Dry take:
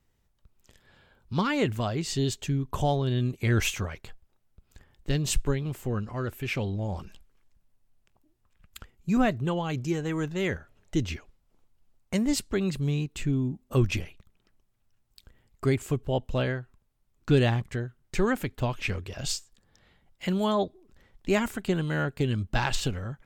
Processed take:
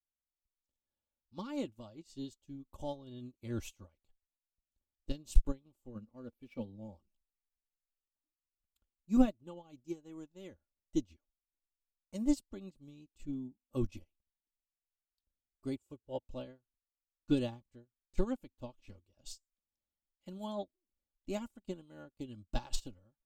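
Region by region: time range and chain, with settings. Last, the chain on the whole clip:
5.95–6.98 s: median filter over 5 samples + dynamic bell 7.4 kHz, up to -5 dB, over -53 dBFS, Q 1.2 + small resonant body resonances 230/470/2300 Hz, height 9 dB, ringing for 65 ms
15.79–16.26 s: high-pass 61 Hz + comb 2.1 ms, depth 38%
whole clip: peaking EQ 1.8 kHz -14 dB 0.95 oct; comb 3.5 ms, depth 62%; upward expansion 2.5:1, over -39 dBFS; trim +1 dB

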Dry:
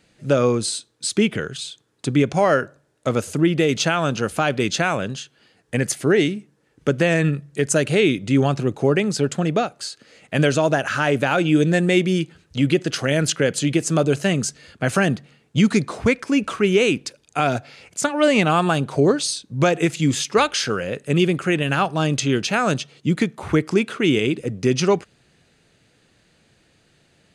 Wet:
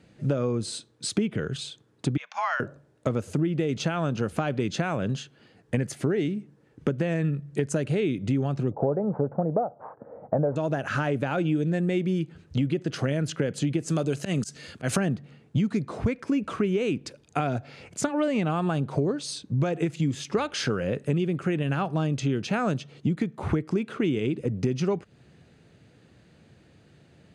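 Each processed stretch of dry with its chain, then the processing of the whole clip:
2.17–2.60 s: elliptic band-pass 910–6000 Hz, stop band 50 dB + frequency shift +56 Hz
8.71–10.56 s: sorted samples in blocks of 8 samples + steep low-pass 1.4 kHz + high-order bell 670 Hz +11 dB 1.2 oct
13.88–14.96 s: high-pass 110 Hz 6 dB/octave + treble shelf 2.7 kHz +11.5 dB + slow attack 126 ms
whole clip: high-pass 82 Hz; tilt EQ -2.5 dB/octave; compression 6:1, threshold -23 dBFS

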